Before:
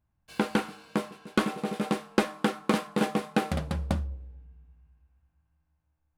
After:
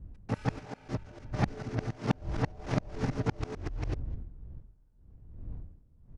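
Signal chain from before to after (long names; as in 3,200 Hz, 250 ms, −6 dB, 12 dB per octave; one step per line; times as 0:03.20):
reversed piece by piece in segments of 148 ms
wind on the microphone 140 Hz −38 dBFS
pitch shifter −10 semitones
level −4.5 dB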